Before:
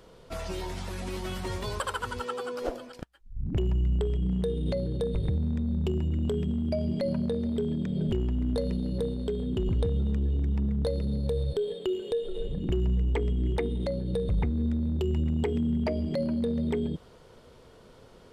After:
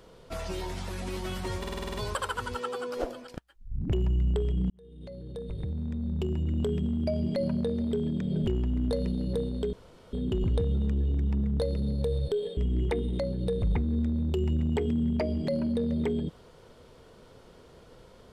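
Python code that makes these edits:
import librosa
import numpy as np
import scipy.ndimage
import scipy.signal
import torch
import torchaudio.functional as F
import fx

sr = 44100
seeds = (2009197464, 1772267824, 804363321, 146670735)

y = fx.edit(x, sr, fx.stutter(start_s=1.59, slice_s=0.05, count=8),
    fx.fade_in_span(start_s=4.35, length_s=1.93),
    fx.insert_room_tone(at_s=9.38, length_s=0.4),
    fx.cut(start_s=11.82, length_s=1.42), tone=tone)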